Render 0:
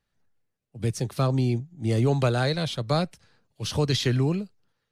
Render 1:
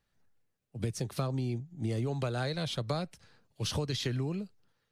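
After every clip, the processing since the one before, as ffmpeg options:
ffmpeg -i in.wav -af "acompressor=threshold=-30dB:ratio=6" out.wav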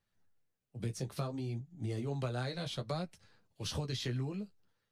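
ffmpeg -i in.wav -af "flanger=delay=9.6:depth=6.8:regen=-26:speed=0.61:shape=sinusoidal,volume=-1dB" out.wav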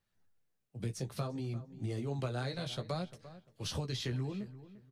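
ffmpeg -i in.wav -filter_complex "[0:a]asplit=2[link_01][link_02];[link_02]adelay=346,lowpass=frequency=2300:poles=1,volume=-15dB,asplit=2[link_03][link_04];[link_04]adelay=346,lowpass=frequency=2300:poles=1,volume=0.27,asplit=2[link_05][link_06];[link_06]adelay=346,lowpass=frequency=2300:poles=1,volume=0.27[link_07];[link_01][link_03][link_05][link_07]amix=inputs=4:normalize=0" out.wav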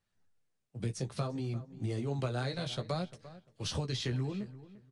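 ffmpeg -i in.wav -filter_complex "[0:a]asplit=2[link_01][link_02];[link_02]aeval=exprs='sgn(val(0))*max(abs(val(0))-0.00224,0)':channel_layout=same,volume=-9.5dB[link_03];[link_01][link_03]amix=inputs=2:normalize=0,aresample=22050,aresample=44100" out.wav

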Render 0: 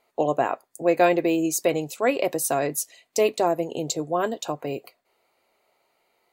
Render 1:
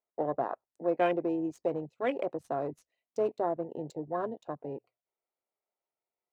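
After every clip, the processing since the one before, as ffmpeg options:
ffmpeg -i in.wav -af "adynamicsmooth=sensitivity=2.5:basefreq=2200,bandreject=frequency=60:width_type=h:width=6,bandreject=frequency=120:width_type=h:width=6,afwtdn=0.0447,volume=-8.5dB" out.wav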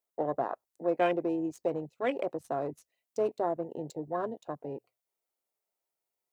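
ffmpeg -i in.wav -af "highshelf=frequency=5900:gain=9" out.wav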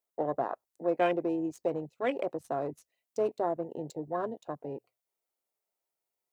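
ffmpeg -i in.wav -af anull out.wav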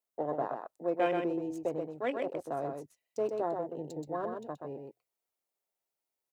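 ffmpeg -i in.wav -af "aecho=1:1:127:0.562,volume=-3dB" out.wav

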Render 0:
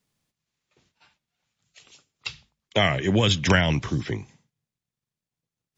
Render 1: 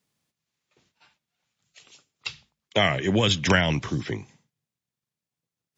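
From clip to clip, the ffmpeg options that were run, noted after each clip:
ffmpeg -i in.wav -af "highpass=frequency=110:poles=1" out.wav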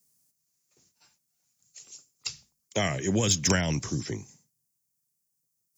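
ffmpeg -i in.wav -filter_complex "[0:a]acrossover=split=500[link_01][link_02];[link_01]acontrast=30[link_03];[link_03][link_02]amix=inputs=2:normalize=0,aexciter=amount=5.8:drive=8.3:freq=5000,volume=-8dB" out.wav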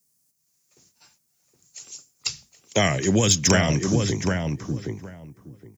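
ffmpeg -i in.wav -filter_complex "[0:a]dynaudnorm=framelen=240:gausssize=3:maxgain=7dB,asplit=2[link_01][link_02];[link_02]adelay=768,lowpass=frequency=1600:poles=1,volume=-3.5dB,asplit=2[link_03][link_04];[link_04]adelay=768,lowpass=frequency=1600:poles=1,volume=0.17,asplit=2[link_05][link_06];[link_06]adelay=768,lowpass=frequency=1600:poles=1,volume=0.17[link_07];[link_03][link_05][link_07]amix=inputs=3:normalize=0[link_08];[link_01][link_08]amix=inputs=2:normalize=0" out.wav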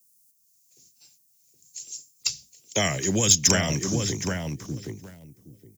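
ffmpeg -i in.wav -filter_complex "[0:a]acrossover=split=290|680|2100[link_01][link_02][link_03][link_04];[link_03]aeval=exprs='val(0)*gte(abs(val(0)),0.00376)':channel_layout=same[link_05];[link_01][link_02][link_05][link_04]amix=inputs=4:normalize=0,crystalizer=i=2:c=0,volume=-5dB" out.wav

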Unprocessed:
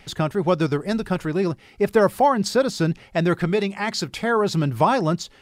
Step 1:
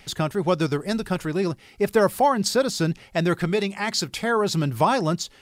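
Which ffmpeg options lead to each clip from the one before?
ffmpeg -i in.wav -af "highshelf=frequency=4000:gain=7.5,volume=-2dB" out.wav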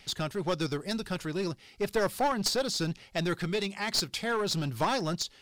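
ffmpeg -i in.wav -af "equalizer=frequency=4400:width_type=o:width=1.4:gain=7,aeval=exprs='clip(val(0),-1,0.112)':channel_layout=same,volume=-7.5dB" out.wav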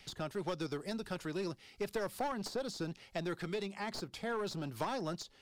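ffmpeg -i in.wav -filter_complex "[0:a]acrossover=split=240|1300[link_01][link_02][link_03];[link_01]acompressor=threshold=-43dB:ratio=4[link_04];[link_02]acompressor=threshold=-32dB:ratio=4[link_05];[link_03]acompressor=threshold=-43dB:ratio=4[link_06];[link_04][link_05][link_06]amix=inputs=3:normalize=0,volume=-3.5dB" out.wav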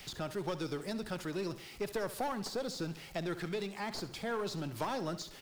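ffmpeg -i in.wav -af "aeval=exprs='val(0)+0.5*0.00355*sgn(val(0))':channel_layout=same,aecho=1:1:68|136|204|272:0.188|0.0904|0.0434|0.0208" out.wav

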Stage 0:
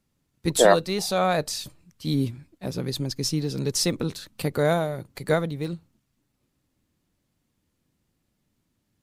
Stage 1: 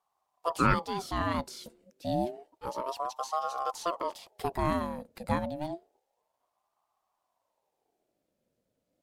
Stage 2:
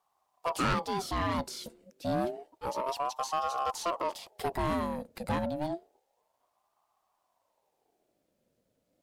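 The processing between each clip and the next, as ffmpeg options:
ffmpeg -i in.wav -filter_complex "[0:a]acrossover=split=2700[link_01][link_02];[link_02]acompressor=threshold=-33dB:ratio=4:attack=1:release=60[link_03];[link_01][link_03]amix=inputs=2:normalize=0,equalizer=frequency=140:width=0.76:gain=4.5,aeval=exprs='val(0)*sin(2*PI*650*n/s+650*0.45/0.29*sin(2*PI*0.29*n/s))':channel_layout=same,volume=-6dB" out.wav
ffmpeg -i in.wav -af "asoftclip=type=tanh:threshold=-27dB,volume=3.5dB" out.wav

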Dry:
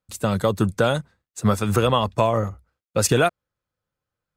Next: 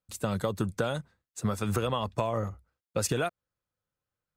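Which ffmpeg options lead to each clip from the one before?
ffmpeg -i in.wav -af "acompressor=threshold=-19dB:ratio=6,volume=-5.5dB" out.wav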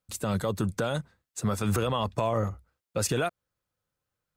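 ffmpeg -i in.wav -af "alimiter=limit=-21.5dB:level=0:latency=1:release=27,volume=4dB" out.wav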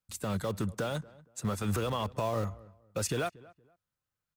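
ffmpeg -i in.wav -filter_complex "[0:a]acrossover=split=390|580|2800[link_01][link_02][link_03][link_04];[link_02]acrusher=bits=6:mix=0:aa=0.000001[link_05];[link_01][link_05][link_03][link_04]amix=inputs=4:normalize=0,asplit=2[link_06][link_07];[link_07]adelay=234,lowpass=frequency=1600:poles=1,volume=-21dB,asplit=2[link_08][link_09];[link_09]adelay=234,lowpass=frequency=1600:poles=1,volume=0.27[link_10];[link_06][link_08][link_10]amix=inputs=3:normalize=0,volume=-4.5dB" out.wav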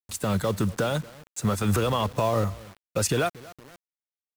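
ffmpeg -i in.wav -af "areverse,acompressor=mode=upward:threshold=-49dB:ratio=2.5,areverse,acrusher=bits=8:mix=0:aa=0.000001,volume=7.5dB" out.wav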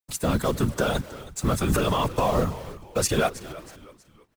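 ffmpeg -i in.wav -filter_complex "[0:a]afftfilt=real='hypot(re,im)*cos(2*PI*random(0))':imag='hypot(re,im)*sin(2*PI*random(1))':win_size=512:overlap=0.75,asplit=4[link_01][link_02][link_03][link_04];[link_02]adelay=320,afreqshift=-79,volume=-17dB[link_05];[link_03]adelay=640,afreqshift=-158,volume=-25dB[link_06];[link_04]adelay=960,afreqshift=-237,volume=-32.9dB[link_07];[link_01][link_05][link_06][link_07]amix=inputs=4:normalize=0,volume=7.5dB" out.wav

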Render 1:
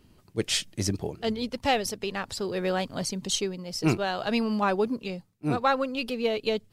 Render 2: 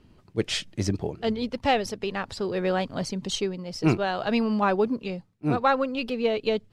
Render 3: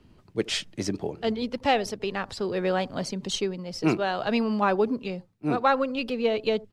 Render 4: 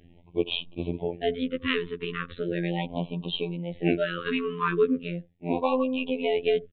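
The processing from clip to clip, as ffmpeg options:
ffmpeg -i in.wav -af "aemphasis=mode=reproduction:type=50fm,volume=2dB" out.wav
ffmpeg -i in.wav -filter_complex "[0:a]acrossover=split=170|1200[link_01][link_02][link_03];[link_01]acompressor=threshold=-42dB:ratio=6[link_04];[link_02]aecho=1:1:77:0.0944[link_05];[link_04][link_05][link_03]amix=inputs=3:normalize=0" out.wav
ffmpeg -i in.wav -af "afftfilt=real='hypot(re,im)*cos(PI*b)':imag='0':win_size=2048:overlap=0.75,aresample=8000,aresample=44100,afftfilt=real='re*(1-between(b*sr/1024,660*pow(1700/660,0.5+0.5*sin(2*PI*0.38*pts/sr))/1.41,660*pow(1700/660,0.5+0.5*sin(2*PI*0.38*pts/sr))*1.41))':imag='im*(1-between(b*sr/1024,660*pow(1700/660,0.5+0.5*sin(2*PI*0.38*pts/sr))/1.41,660*pow(1700/660,0.5+0.5*sin(2*PI*0.38*pts/sr))*1.41))':win_size=1024:overlap=0.75,volume=4dB" out.wav

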